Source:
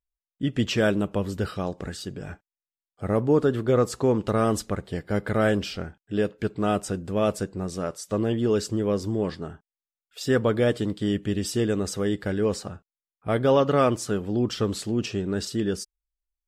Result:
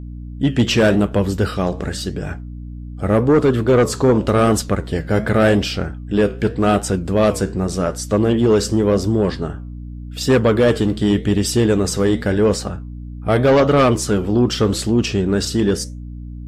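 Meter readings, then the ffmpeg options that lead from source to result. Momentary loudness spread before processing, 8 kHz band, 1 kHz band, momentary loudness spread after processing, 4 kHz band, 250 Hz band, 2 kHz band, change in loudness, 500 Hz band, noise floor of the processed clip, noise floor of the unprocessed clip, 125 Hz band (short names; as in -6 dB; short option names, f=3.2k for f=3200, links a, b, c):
12 LU, +10.0 dB, +7.5 dB, 13 LU, +9.5 dB, +9.0 dB, +8.5 dB, +8.5 dB, +8.0 dB, -31 dBFS, under -85 dBFS, +9.5 dB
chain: -af "flanger=delay=7.7:depth=9.5:regen=-77:speed=0.87:shape=triangular,aeval=exprs='val(0)+0.00631*(sin(2*PI*60*n/s)+sin(2*PI*2*60*n/s)/2+sin(2*PI*3*60*n/s)/3+sin(2*PI*4*60*n/s)/4+sin(2*PI*5*60*n/s)/5)':c=same,aeval=exprs='0.237*sin(PI/2*2*val(0)/0.237)':c=same,volume=4.5dB"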